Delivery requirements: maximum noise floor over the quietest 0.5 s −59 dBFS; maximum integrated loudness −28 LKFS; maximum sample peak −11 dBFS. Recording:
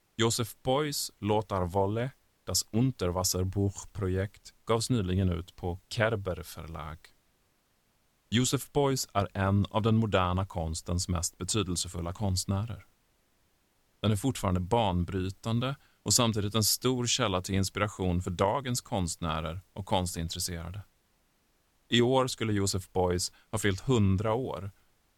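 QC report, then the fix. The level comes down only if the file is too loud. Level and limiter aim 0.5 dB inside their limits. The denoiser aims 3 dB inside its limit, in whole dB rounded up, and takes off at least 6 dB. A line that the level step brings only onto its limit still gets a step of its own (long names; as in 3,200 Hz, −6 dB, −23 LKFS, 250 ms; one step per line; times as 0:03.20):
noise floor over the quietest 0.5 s −71 dBFS: in spec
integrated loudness −30.0 LKFS: in spec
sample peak −9.0 dBFS: out of spec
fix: brickwall limiter −11.5 dBFS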